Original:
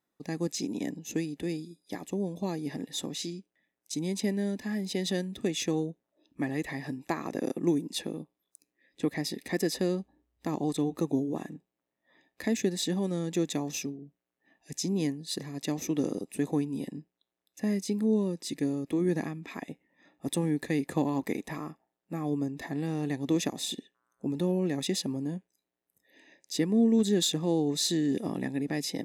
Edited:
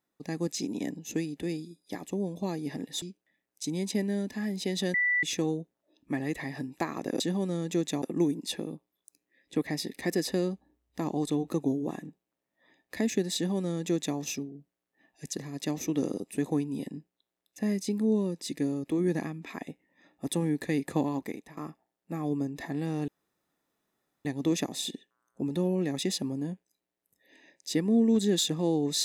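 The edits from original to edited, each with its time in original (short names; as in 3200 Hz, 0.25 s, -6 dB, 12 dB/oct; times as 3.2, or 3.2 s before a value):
3.02–3.31 cut
5.23–5.52 bleep 1970 Hz -23 dBFS
12.82–13.64 copy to 7.49
14.8–15.34 cut
21.03–21.58 fade out, to -17 dB
23.09 insert room tone 1.17 s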